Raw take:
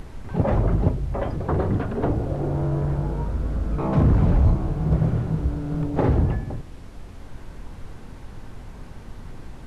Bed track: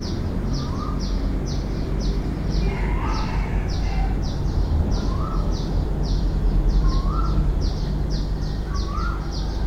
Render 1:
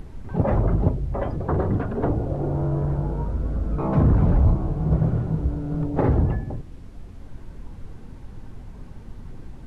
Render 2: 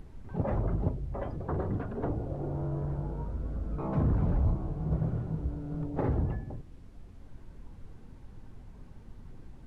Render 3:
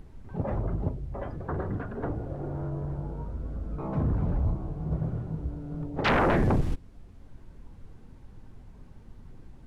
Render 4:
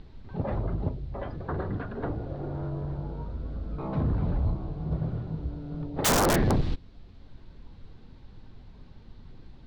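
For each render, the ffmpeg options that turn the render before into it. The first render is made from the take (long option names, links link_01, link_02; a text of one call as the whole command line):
ffmpeg -i in.wav -af "afftdn=noise_reduction=7:noise_floor=-41" out.wav
ffmpeg -i in.wav -af "volume=-9.5dB" out.wav
ffmpeg -i in.wav -filter_complex "[0:a]asettb=1/sr,asplit=3[link_01][link_02][link_03];[link_01]atrim=end=1.234[link_04];[link_02]atrim=start=1.23:end=2.7,asetpts=PTS-STARTPTS,afade=type=in:duration=0.004:curve=qsin,afade=type=out:start_time=1.466:duration=0.004:curve=qsin,equalizer=frequency=1600:width_type=o:width=0.8:gain=6.5[link_05];[link_03]atrim=start=2.696[link_06];[link_04][link_05]acrossfade=duration=0.004:curve1=hsin:curve2=qsin[link_07];[link_07][link_06]acrossfade=duration=0.004:curve1=qsin:curve2=hsin,asplit=3[link_08][link_09][link_10];[link_08]afade=type=out:start_time=6.04:duration=0.02[link_11];[link_09]aeval=exprs='0.112*sin(PI/2*8.91*val(0)/0.112)':channel_layout=same,afade=type=in:start_time=6.04:duration=0.02,afade=type=out:start_time=6.74:duration=0.02[link_12];[link_10]afade=type=in:start_time=6.74:duration=0.02[link_13];[link_11][link_12][link_13]amix=inputs=3:normalize=0" out.wav
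ffmpeg -i in.wav -af "lowpass=frequency=4100:width_type=q:width=3.4,aeval=exprs='(mod(7.94*val(0)+1,2)-1)/7.94':channel_layout=same" out.wav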